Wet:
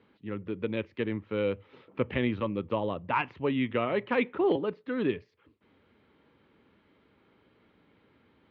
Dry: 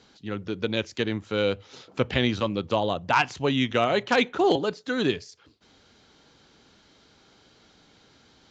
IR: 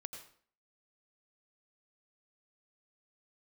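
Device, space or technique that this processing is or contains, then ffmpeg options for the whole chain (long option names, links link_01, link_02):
bass cabinet: -af "highpass=71,equalizer=frequency=140:width_type=q:width=4:gain=-4,equalizer=frequency=730:width_type=q:width=4:gain=-9,equalizer=frequency=1500:width_type=q:width=4:gain=-7,lowpass=frequency=2400:width=0.5412,lowpass=frequency=2400:width=1.3066,volume=-3dB"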